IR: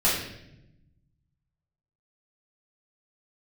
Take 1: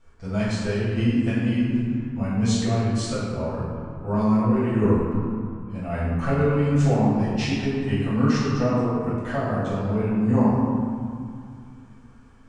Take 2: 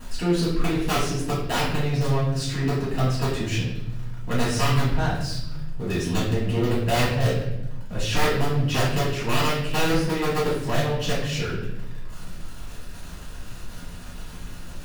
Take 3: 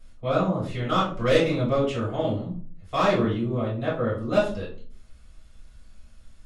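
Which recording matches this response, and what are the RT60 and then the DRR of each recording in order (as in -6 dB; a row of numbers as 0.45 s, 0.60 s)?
2; 2.3 s, 0.85 s, 0.45 s; -10.0 dB, -10.5 dB, -8.0 dB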